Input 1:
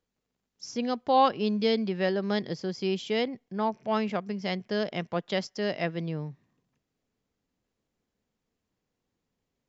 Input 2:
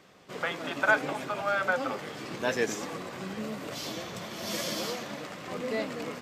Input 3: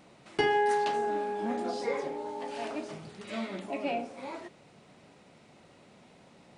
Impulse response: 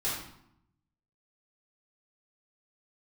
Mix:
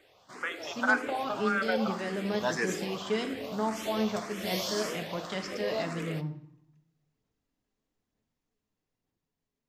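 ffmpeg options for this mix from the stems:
-filter_complex "[0:a]alimiter=limit=-21dB:level=0:latency=1,aphaser=in_gain=1:out_gain=1:delay=5:decay=0.32:speed=1.1:type=sinusoidal,volume=-8dB,asplit=2[link_01][link_02];[link_02]volume=-11dB[link_03];[1:a]equalizer=frequency=170:width_type=o:width=0.77:gain=-13,asplit=2[link_04][link_05];[link_05]afreqshift=1.8[link_06];[link_04][link_06]amix=inputs=2:normalize=1,volume=-1.5dB,asplit=2[link_07][link_08];[link_08]volume=-21dB[link_09];[3:a]atrim=start_sample=2205[link_10];[link_03][link_09]amix=inputs=2:normalize=0[link_11];[link_11][link_10]afir=irnorm=-1:irlink=0[link_12];[link_01][link_07][link_12]amix=inputs=3:normalize=0,dynaudnorm=framelen=610:gausssize=5:maxgain=3dB"

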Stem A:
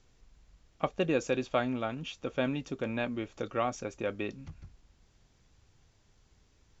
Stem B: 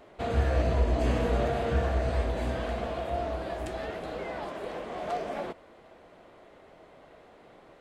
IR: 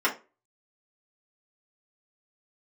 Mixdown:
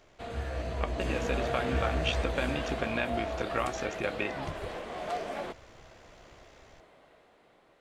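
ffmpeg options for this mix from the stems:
-filter_complex "[0:a]acompressor=threshold=-39dB:ratio=4,equalizer=frequency=2000:width_type=o:width=2.1:gain=8.5,tremolo=f=68:d=0.667,volume=2dB[link_01];[1:a]tiltshelf=frequency=1200:gain=-3,volume=-7.5dB[link_02];[link_01][link_02]amix=inputs=2:normalize=0,dynaudnorm=framelen=220:gausssize=11:maxgain=7dB"

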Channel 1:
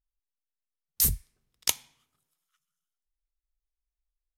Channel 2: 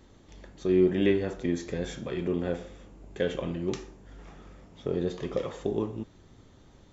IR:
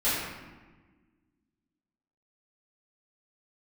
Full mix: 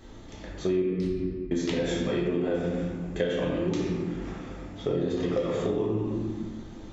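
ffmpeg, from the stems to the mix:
-filter_complex "[0:a]lowpass=frequency=3900:width=0.5412,lowpass=frequency=3900:width=1.3066,dynaudnorm=framelen=630:gausssize=3:maxgain=5.5dB,volume=-11dB,asplit=2[link_01][link_02];[link_02]volume=-8.5dB[link_03];[1:a]volume=1dB,asplit=3[link_04][link_05][link_06];[link_04]atrim=end=0.82,asetpts=PTS-STARTPTS,afade=type=out:start_time=0.816:duration=0.004:curve=hsin[link_07];[link_05]atrim=start=0.82:end=1.51,asetpts=PTS-STARTPTS,volume=0[link_08];[link_06]atrim=start=1.51,asetpts=PTS-STARTPTS,afade=type=in:duration=0.004:curve=hsin[link_09];[link_07][link_08][link_09]concat=n=3:v=0:a=1,asplit=2[link_10][link_11];[link_11]volume=-4.5dB[link_12];[2:a]atrim=start_sample=2205[link_13];[link_03][link_12]amix=inputs=2:normalize=0[link_14];[link_14][link_13]afir=irnorm=-1:irlink=0[link_15];[link_01][link_10][link_15]amix=inputs=3:normalize=0,acompressor=threshold=-24dB:ratio=6"

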